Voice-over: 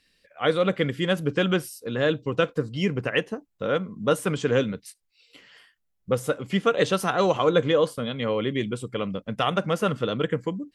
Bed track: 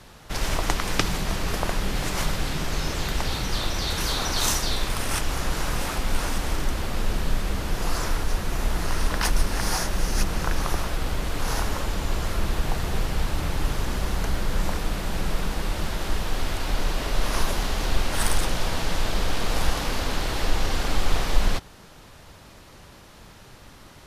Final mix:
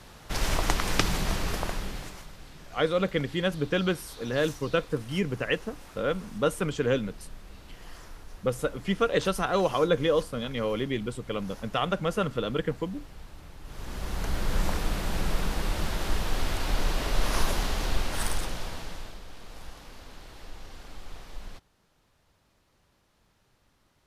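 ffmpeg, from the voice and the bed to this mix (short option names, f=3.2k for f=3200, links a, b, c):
-filter_complex "[0:a]adelay=2350,volume=-3.5dB[a];[1:a]volume=17dB,afade=t=out:st=1.28:d=0.94:silence=0.112202,afade=t=in:st=13.64:d=0.91:silence=0.11885,afade=t=out:st=17.51:d=1.69:silence=0.11885[b];[a][b]amix=inputs=2:normalize=0"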